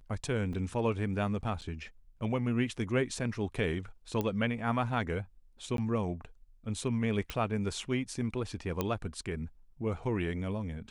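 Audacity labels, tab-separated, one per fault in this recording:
0.530000	0.530000	gap 3.4 ms
1.610000	1.620000	gap 8.5 ms
4.210000	4.210000	pop -19 dBFS
5.770000	5.780000	gap 12 ms
7.300000	7.300000	pop
8.810000	8.810000	pop -16 dBFS

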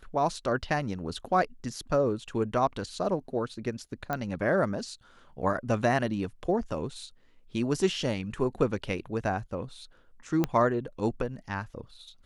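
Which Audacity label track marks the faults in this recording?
4.130000	4.130000	pop -17 dBFS
10.440000	10.440000	pop -13 dBFS

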